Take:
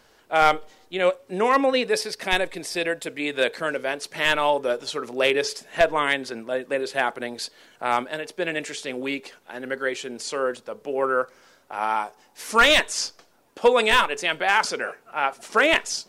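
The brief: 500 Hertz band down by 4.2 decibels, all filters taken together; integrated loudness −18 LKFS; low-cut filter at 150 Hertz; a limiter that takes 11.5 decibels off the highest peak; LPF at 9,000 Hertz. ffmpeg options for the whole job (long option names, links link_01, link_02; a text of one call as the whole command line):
ffmpeg -i in.wav -af "highpass=150,lowpass=9000,equalizer=frequency=500:width_type=o:gain=-5,volume=12.5dB,alimiter=limit=-5.5dB:level=0:latency=1" out.wav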